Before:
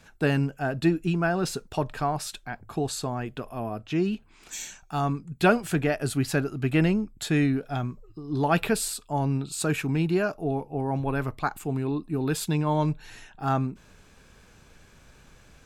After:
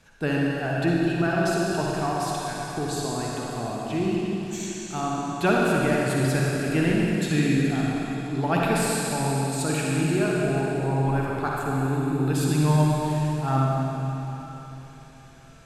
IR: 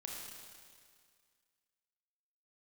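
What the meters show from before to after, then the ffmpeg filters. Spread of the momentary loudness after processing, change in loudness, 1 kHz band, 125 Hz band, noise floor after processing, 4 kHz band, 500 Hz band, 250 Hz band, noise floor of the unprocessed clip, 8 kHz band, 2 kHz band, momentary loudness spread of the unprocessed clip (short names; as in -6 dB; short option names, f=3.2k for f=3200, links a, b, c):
8 LU, +2.5 dB, +3.0 dB, +3.5 dB, -45 dBFS, +2.5 dB, +2.5 dB, +3.0 dB, -55 dBFS, +2.5 dB, +3.0 dB, 10 LU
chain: -filter_complex "[1:a]atrim=start_sample=2205,asetrate=24696,aresample=44100[a];[0:a][a]afir=irnorm=-1:irlink=0"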